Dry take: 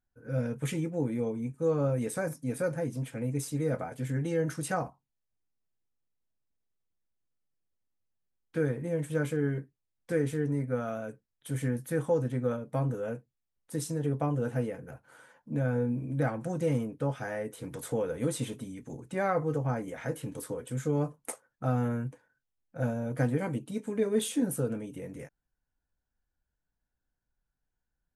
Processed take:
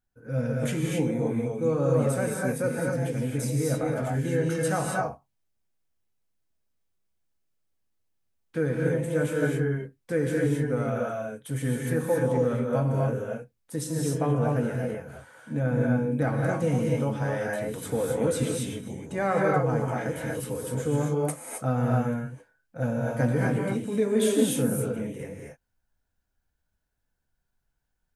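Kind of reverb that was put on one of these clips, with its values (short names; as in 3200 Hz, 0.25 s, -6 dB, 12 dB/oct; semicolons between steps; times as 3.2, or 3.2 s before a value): non-linear reverb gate 0.29 s rising, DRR -2 dB; gain +2 dB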